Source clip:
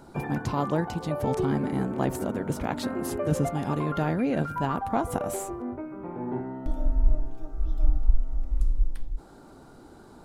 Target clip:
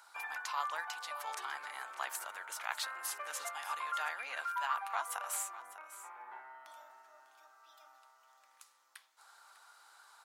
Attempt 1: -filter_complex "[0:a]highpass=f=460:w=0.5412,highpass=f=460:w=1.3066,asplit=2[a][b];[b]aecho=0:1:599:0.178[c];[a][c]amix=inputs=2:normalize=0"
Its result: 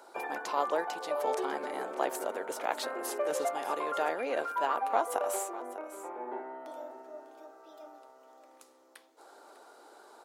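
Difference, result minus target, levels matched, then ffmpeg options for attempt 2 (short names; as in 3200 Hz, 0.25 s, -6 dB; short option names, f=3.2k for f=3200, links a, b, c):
500 Hz band +15.0 dB
-filter_complex "[0:a]highpass=f=1.1k:w=0.5412,highpass=f=1.1k:w=1.3066,asplit=2[a][b];[b]aecho=0:1:599:0.178[c];[a][c]amix=inputs=2:normalize=0"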